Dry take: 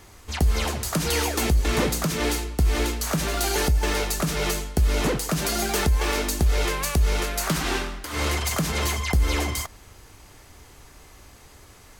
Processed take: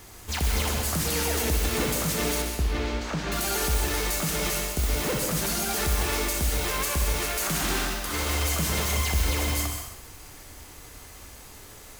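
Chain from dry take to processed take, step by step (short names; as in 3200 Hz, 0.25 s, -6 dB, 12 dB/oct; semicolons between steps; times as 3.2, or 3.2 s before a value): high shelf 8100 Hz +8 dB; limiter -19.5 dBFS, peak gain reduction 10 dB; modulation noise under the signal 11 dB; 2.42–3.32 air absorption 160 m; flutter echo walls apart 11 m, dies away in 0.43 s; plate-style reverb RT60 0.7 s, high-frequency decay 0.9×, pre-delay 0.115 s, DRR 4 dB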